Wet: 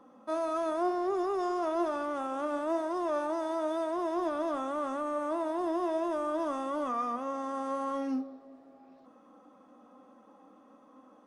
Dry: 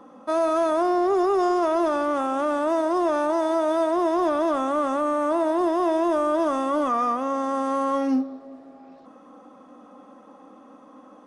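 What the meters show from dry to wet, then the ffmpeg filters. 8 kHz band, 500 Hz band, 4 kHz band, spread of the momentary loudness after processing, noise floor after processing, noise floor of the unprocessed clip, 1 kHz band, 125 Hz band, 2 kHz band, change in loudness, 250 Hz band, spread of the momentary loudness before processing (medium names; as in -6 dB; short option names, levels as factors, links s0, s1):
-9.5 dB, -9.5 dB, -9.5 dB, 4 LU, -59 dBFS, -49 dBFS, -9.5 dB, no reading, -9.5 dB, -9.5 dB, -9.5 dB, 3 LU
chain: -af "flanger=delay=7.5:depth=3:regen=76:speed=1:shape=triangular,volume=0.562"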